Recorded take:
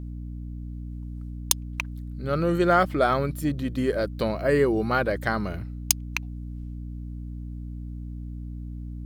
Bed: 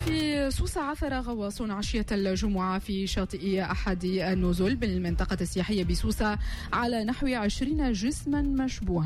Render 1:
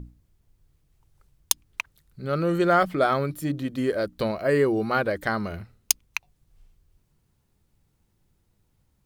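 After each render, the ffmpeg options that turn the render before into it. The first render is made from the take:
-af "bandreject=f=60:t=h:w=6,bandreject=f=120:t=h:w=6,bandreject=f=180:t=h:w=6,bandreject=f=240:t=h:w=6,bandreject=f=300:t=h:w=6"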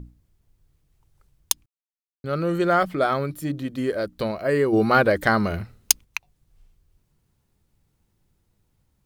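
-filter_complex "[0:a]asplit=3[s0][s1][s2];[s0]afade=t=out:st=4.72:d=0.02[s3];[s1]acontrast=82,afade=t=in:st=4.72:d=0.02,afade=t=out:st=6.03:d=0.02[s4];[s2]afade=t=in:st=6.03:d=0.02[s5];[s3][s4][s5]amix=inputs=3:normalize=0,asplit=3[s6][s7][s8];[s6]atrim=end=1.66,asetpts=PTS-STARTPTS,afade=t=out:st=1.656:d=0.004:c=hsin[s9];[s7]atrim=start=1.66:end=2.24,asetpts=PTS-STARTPTS,volume=0[s10];[s8]atrim=start=2.24,asetpts=PTS-STARTPTS,afade=t=in:d=0.004:c=hsin[s11];[s9][s10][s11]concat=n=3:v=0:a=1"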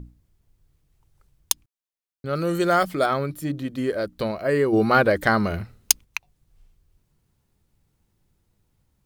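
-filter_complex "[0:a]asettb=1/sr,asplit=3[s0][s1][s2];[s0]atrim=end=2.354[s3];[s1]atrim=start=2.35:end=3.06,asetpts=PTS-STARTPTS,afade=t=in:d=0.004:c=qsin,afade=t=out:st=0.706:d=0.004:c=qsin,bass=f=250:g=-1,treble=f=4000:g=10[s4];[s2]atrim=start=3.056[s5];[s3][s4]acrossfade=d=0.004:c1=hsin:c2=qsin[s6];[s6][s5]acrossfade=d=0.004:c1=qsin:c2=hsin"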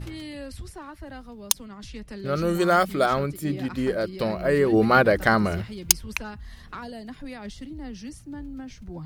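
-filter_complex "[1:a]volume=0.316[s0];[0:a][s0]amix=inputs=2:normalize=0"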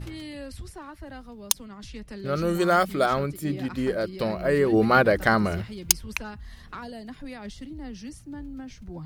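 -af "volume=0.891,alimiter=limit=0.708:level=0:latency=1"

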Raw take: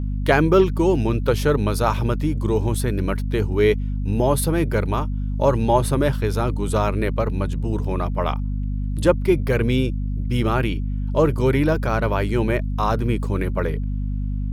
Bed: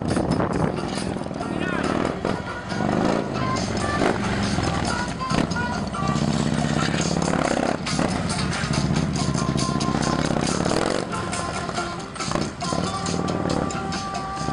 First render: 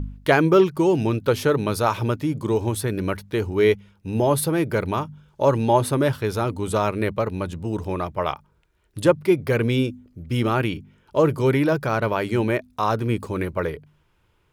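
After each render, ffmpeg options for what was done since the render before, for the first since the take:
-af "bandreject=f=50:t=h:w=4,bandreject=f=100:t=h:w=4,bandreject=f=150:t=h:w=4,bandreject=f=200:t=h:w=4,bandreject=f=250:t=h:w=4"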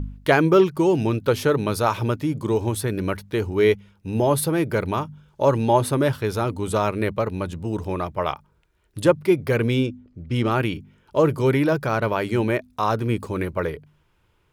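-filter_complex "[0:a]asettb=1/sr,asplit=3[s0][s1][s2];[s0]atrim=end=9.744[s3];[s1]atrim=start=9.74:end=10.51,asetpts=PTS-STARTPTS,afade=t=in:d=0.004:c=qsin,afade=t=out:st=0.766:d=0.004:c=qsin,adynamicsmooth=sensitivity=6:basefreq=5600[s4];[s2]atrim=start=10.506[s5];[s3][s4]acrossfade=d=0.004:c1=hsin:c2=qsin[s6];[s6][s5]acrossfade=d=0.004:c1=qsin:c2=hsin"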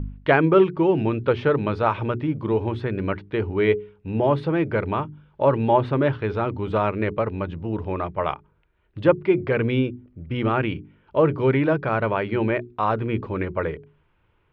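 -af "lowpass=f=3000:w=0.5412,lowpass=f=3000:w=1.3066,bandreject=f=60:t=h:w=6,bandreject=f=120:t=h:w=6,bandreject=f=180:t=h:w=6,bandreject=f=240:t=h:w=6,bandreject=f=300:t=h:w=6,bandreject=f=360:t=h:w=6,bandreject=f=420:t=h:w=6"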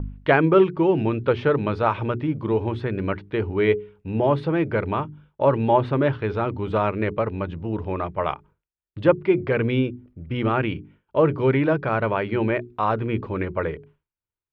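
-af "agate=range=0.0224:threshold=0.00562:ratio=3:detection=peak"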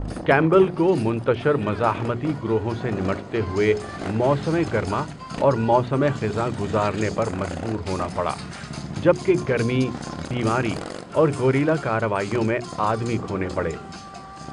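-filter_complex "[1:a]volume=0.299[s0];[0:a][s0]amix=inputs=2:normalize=0"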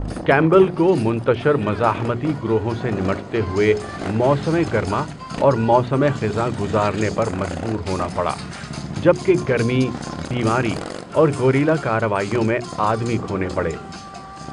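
-af "volume=1.41,alimiter=limit=0.794:level=0:latency=1"

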